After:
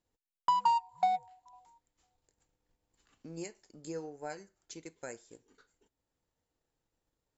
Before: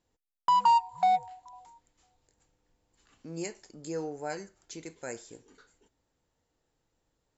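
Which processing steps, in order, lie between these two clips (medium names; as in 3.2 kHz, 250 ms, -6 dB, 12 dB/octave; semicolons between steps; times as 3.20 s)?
transient shaper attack +5 dB, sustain -4 dB; trim -7 dB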